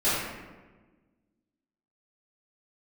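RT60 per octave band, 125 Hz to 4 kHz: 1.7, 1.8, 1.4, 1.2, 1.1, 0.75 s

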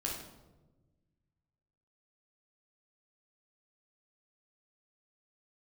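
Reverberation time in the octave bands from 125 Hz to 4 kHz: 2.3, 1.8, 1.4, 0.95, 0.70, 0.65 s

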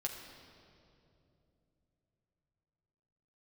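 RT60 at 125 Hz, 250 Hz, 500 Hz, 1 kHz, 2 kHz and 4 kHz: 4.9, 4.0, 3.4, 2.4, 2.0, 1.9 s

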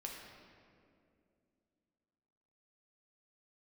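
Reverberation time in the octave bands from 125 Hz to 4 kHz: 3.0, 3.3, 2.8, 2.0, 1.8, 1.4 s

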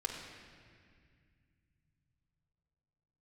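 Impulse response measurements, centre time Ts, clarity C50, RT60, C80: 65 ms, 3.5 dB, 2.1 s, 4.5 dB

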